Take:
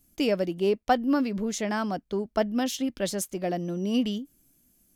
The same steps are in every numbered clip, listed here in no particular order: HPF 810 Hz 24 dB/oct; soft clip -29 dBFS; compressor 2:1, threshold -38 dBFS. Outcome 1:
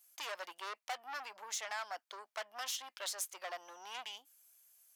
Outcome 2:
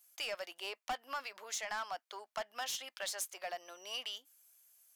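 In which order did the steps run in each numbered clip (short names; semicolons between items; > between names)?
soft clip > HPF > compressor; HPF > soft clip > compressor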